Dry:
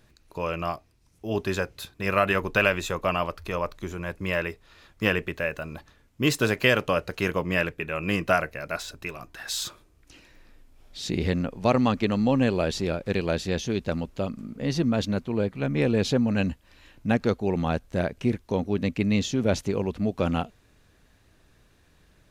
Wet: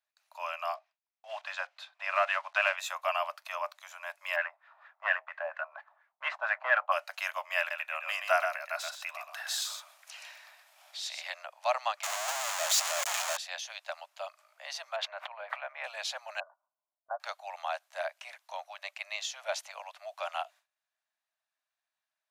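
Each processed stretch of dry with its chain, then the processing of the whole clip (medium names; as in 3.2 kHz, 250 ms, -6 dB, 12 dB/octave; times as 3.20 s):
0.74–2.78 s: block-companded coder 5-bit + low-pass 3.6 kHz + de-esser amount 60%
4.36–6.92 s: CVSD coder 64 kbps + LFO low-pass sine 4.3 Hz 820–1900 Hz
7.58–11.34 s: upward compressor, threshold -30 dBFS + delay 124 ms -6.5 dB
12.03–13.37 s: one-bit comparator + peaking EQ 6.9 kHz +10.5 dB 0.39 oct
14.96–15.84 s: three-band isolator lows -13 dB, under 250 Hz, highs -22 dB, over 2.7 kHz + decay stretcher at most 35 dB/s
16.40–17.20 s: peaking EQ 690 Hz +5 dB 0.52 oct + level-controlled noise filter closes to 500 Hz, open at -19.5 dBFS + rippled Chebyshev low-pass 1.5 kHz, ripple 6 dB
whole clip: steep high-pass 610 Hz 96 dB/octave; gate with hold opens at -53 dBFS; trim -3.5 dB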